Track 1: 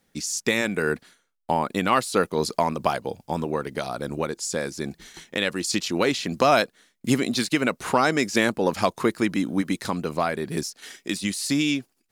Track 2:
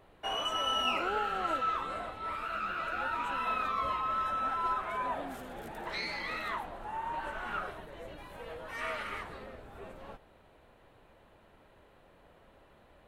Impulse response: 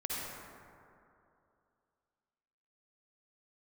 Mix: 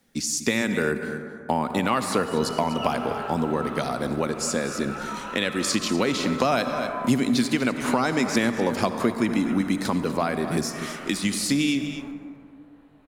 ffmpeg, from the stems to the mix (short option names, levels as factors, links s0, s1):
-filter_complex "[0:a]equalizer=f=240:t=o:w=0.26:g=6.5,volume=1.06,asplit=4[s0][s1][s2][s3];[s1]volume=0.266[s4];[s2]volume=0.237[s5];[1:a]flanger=delay=19.5:depth=5:speed=0.18,adelay=1950,volume=0.891,asplit=2[s6][s7];[s7]volume=0.447[s8];[s3]apad=whole_len=662469[s9];[s6][s9]sidechaincompress=threshold=0.0447:ratio=8:attack=16:release=276[s10];[2:a]atrim=start_sample=2205[s11];[s4][s8]amix=inputs=2:normalize=0[s12];[s12][s11]afir=irnorm=-1:irlink=0[s13];[s5]aecho=0:1:246:1[s14];[s0][s10][s13][s14]amix=inputs=4:normalize=0,acrossover=split=130[s15][s16];[s16]acompressor=threshold=0.0891:ratio=2.5[s17];[s15][s17]amix=inputs=2:normalize=0"